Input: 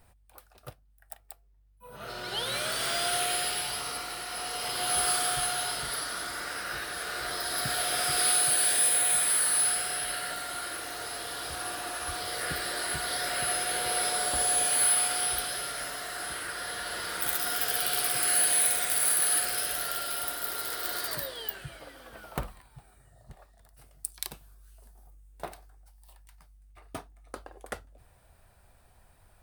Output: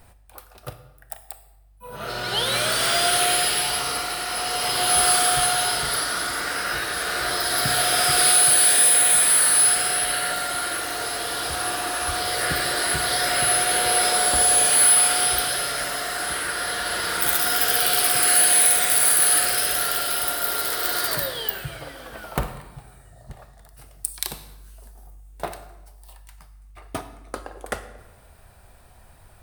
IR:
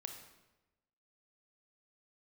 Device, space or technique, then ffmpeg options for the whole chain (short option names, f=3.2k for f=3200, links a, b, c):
saturated reverb return: -filter_complex "[0:a]asplit=2[a][b];[1:a]atrim=start_sample=2205[c];[b][c]afir=irnorm=-1:irlink=0,asoftclip=type=tanh:threshold=-23dB,volume=5.5dB[d];[a][d]amix=inputs=2:normalize=0,volume=2.5dB"